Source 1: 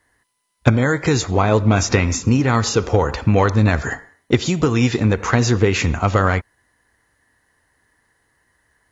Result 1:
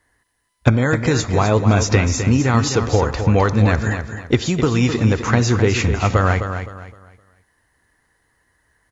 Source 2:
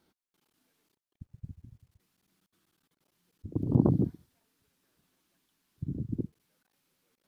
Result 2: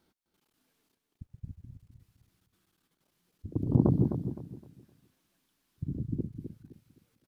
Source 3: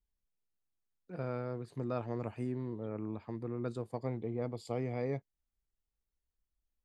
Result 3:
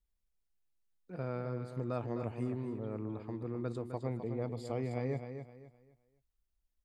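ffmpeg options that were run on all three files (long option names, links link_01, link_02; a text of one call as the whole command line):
ffmpeg -i in.wav -af "lowshelf=frequency=70:gain=5.5,aecho=1:1:258|516|774|1032:0.376|0.113|0.0338|0.0101,volume=-1dB" out.wav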